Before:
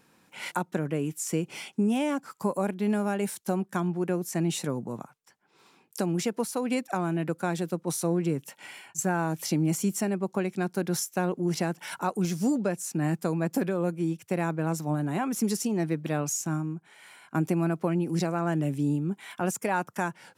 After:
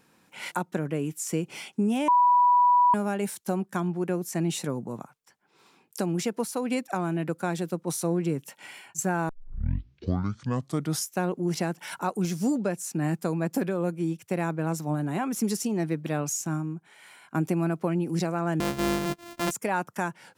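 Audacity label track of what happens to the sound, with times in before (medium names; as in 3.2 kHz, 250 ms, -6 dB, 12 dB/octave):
2.080000	2.940000	bleep 981 Hz -16 dBFS
9.290000	9.290000	tape start 1.81 s
18.600000	19.510000	sorted samples in blocks of 128 samples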